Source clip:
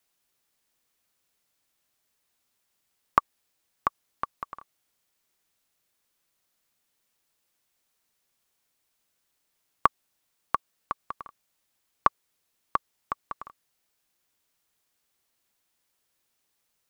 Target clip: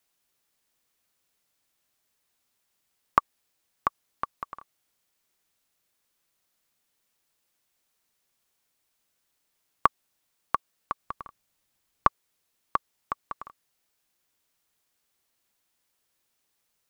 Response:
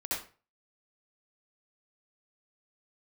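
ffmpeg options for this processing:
-filter_complex "[0:a]asettb=1/sr,asplit=3[link_01][link_02][link_03];[link_01]atrim=end=11.064[link_04];[link_02]atrim=start=11.06:end=12.07,asetpts=PTS-STARTPTS,afade=type=in:duration=0.004:curve=qsin,afade=type=out:start_time=1.006:duration=0.004:curve=qsin,lowshelf=frequency=190:gain=7[link_05];[link_03]atrim=start=12.066[link_06];[link_04][link_05]acrossfade=duration=0.004:curve1=hsin:curve2=qsin[link_07];[link_07][link_06]acrossfade=duration=0.004:curve1=qsin:curve2=hsin"

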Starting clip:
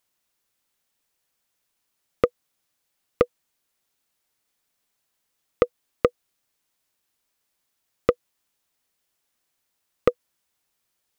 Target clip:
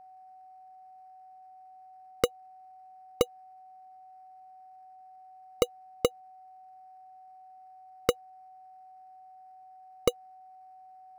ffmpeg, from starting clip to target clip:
ffmpeg -i in.wav -af "acrusher=samples=13:mix=1:aa=0.000001,aeval=exprs='val(0)+0.00631*sin(2*PI*750*n/s)':channel_layout=same,volume=-5.5dB" out.wav

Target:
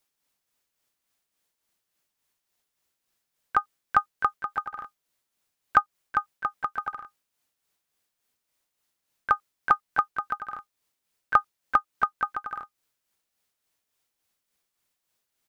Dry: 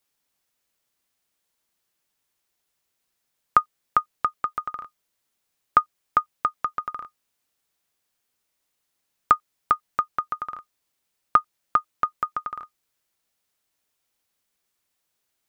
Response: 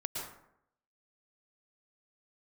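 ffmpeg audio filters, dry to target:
-filter_complex "[0:a]tremolo=f=3.5:d=0.49,asplit=3[link_01][link_02][link_03];[link_02]asetrate=29433,aresample=44100,atempo=1.49831,volume=-12dB[link_04];[link_03]asetrate=55563,aresample=44100,atempo=0.793701,volume=-11dB[link_05];[link_01][link_04][link_05]amix=inputs=3:normalize=0"

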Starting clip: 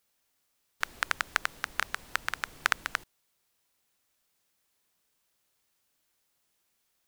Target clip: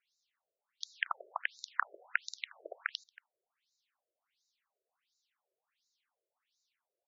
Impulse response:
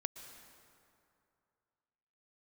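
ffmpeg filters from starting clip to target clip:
-af "aecho=1:1:229:0.0668,afftfilt=real='re*between(b*sr/1024,470*pow(5300/470,0.5+0.5*sin(2*PI*1.4*pts/sr))/1.41,470*pow(5300/470,0.5+0.5*sin(2*PI*1.4*pts/sr))*1.41)':imag='im*between(b*sr/1024,470*pow(5300/470,0.5+0.5*sin(2*PI*1.4*pts/sr))/1.41,470*pow(5300/470,0.5+0.5*sin(2*PI*1.4*pts/sr))*1.41)':win_size=1024:overlap=0.75,volume=1dB"

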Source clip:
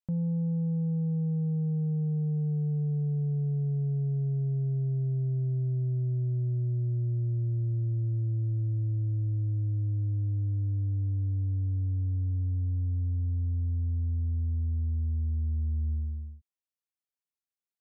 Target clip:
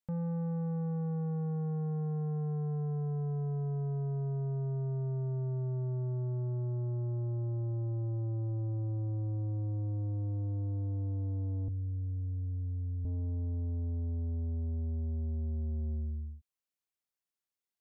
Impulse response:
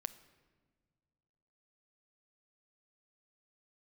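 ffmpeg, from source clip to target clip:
-filter_complex "[0:a]asettb=1/sr,asplit=3[link_01][link_02][link_03];[link_01]atrim=end=11.684[link_04];[link_02]atrim=start=11.68:end=13.05,asetpts=PTS-STARTPTS,afade=type=in:duration=0.004:curve=qsin,afade=type=out:start_time=1.366:duration=0.004:curve=qsin,highpass=86[link_05];[link_03]atrim=start=13.046[link_06];[link_04][link_05]acrossfade=duration=0.004:curve1=hsin:curve2=qsin[link_07];[link_07][link_06]acrossfade=duration=0.004:curve1=qsin:curve2=hsin,asoftclip=type=tanh:threshold=-32dB"

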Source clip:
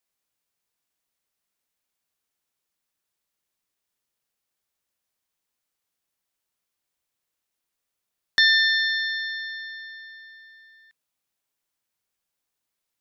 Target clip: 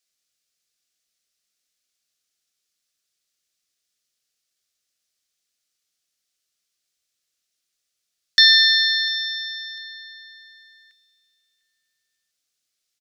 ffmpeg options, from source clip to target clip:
ffmpeg -i in.wav -filter_complex "[0:a]asuperstop=centerf=930:order=4:qfactor=2.6,equalizer=frequency=5300:width=0.58:gain=13.5,asplit=2[link_01][link_02];[link_02]aecho=0:1:698|1396:0.106|0.0275[link_03];[link_01][link_03]amix=inputs=2:normalize=0,volume=-3.5dB" out.wav

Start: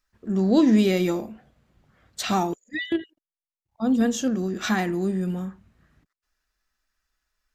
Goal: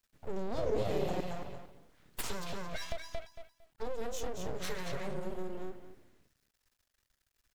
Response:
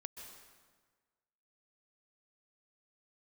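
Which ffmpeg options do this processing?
-filter_complex "[0:a]asplit=2[link_01][link_02];[link_02]adelay=227,lowpass=frequency=5000:poles=1,volume=-3.5dB,asplit=2[link_03][link_04];[link_04]adelay=227,lowpass=frequency=5000:poles=1,volume=0.2,asplit=2[link_05][link_06];[link_06]adelay=227,lowpass=frequency=5000:poles=1,volume=0.2[link_07];[link_01][link_03][link_05][link_07]amix=inputs=4:normalize=0,acompressor=threshold=-29dB:ratio=6,equalizer=frequency=1000:width=1.1:gain=-8.5,aeval=exprs='abs(val(0))':channel_layout=same,acrusher=bits=9:dc=4:mix=0:aa=0.000001,asettb=1/sr,asplit=3[link_08][link_09][link_10];[link_08]atrim=end=0.584[link_11];[link_09]atrim=start=0.58:end=1.21,asetpts=PTS-STARTPTS,afade=type=in:duration=0.004:curve=qsin,afade=type=out:start_time=0.626:duration=0.004:curve=qsin,equalizer=frequency=330:width=0.76:gain=10[link_12];[link_10]atrim=start=1.206[link_13];[link_11][link_12]acrossfade=duration=0.004:curve1=hsin:curve2=qsin[link_14];[link_14][link_13]acrossfade=duration=0.004:curve1=qsin:curve2=hsin,volume=-2dB"

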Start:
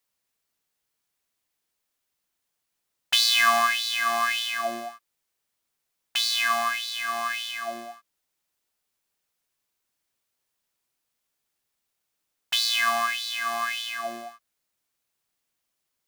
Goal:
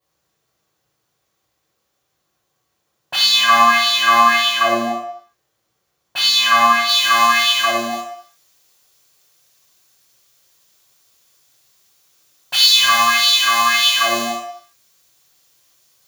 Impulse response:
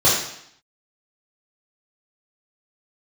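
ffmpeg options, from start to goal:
-filter_complex "[0:a]asetnsamples=nb_out_samples=441:pad=0,asendcmd='6.87 highshelf g 4;7.9 highshelf g 11',highshelf=frequency=2100:gain=-5.5,asoftclip=type=tanh:threshold=-7.5dB,equalizer=frequency=7800:width_type=o:width=2.4:gain=-2.5,alimiter=limit=-19.5dB:level=0:latency=1[link_01];[1:a]atrim=start_sample=2205,afade=type=out:start_time=0.44:duration=0.01,atrim=end_sample=19845[link_02];[link_01][link_02]afir=irnorm=-1:irlink=0,volume=-4.5dB"

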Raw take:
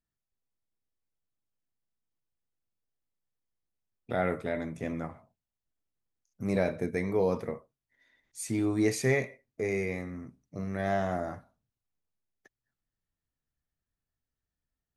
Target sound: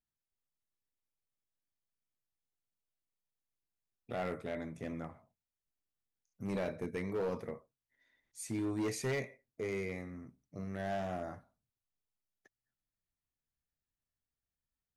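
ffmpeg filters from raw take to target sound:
ffmpeg -i in.wav -af "volume=24dB,asoftclip=hard,volume=-24dB,volume=-6.5dB" out.wav

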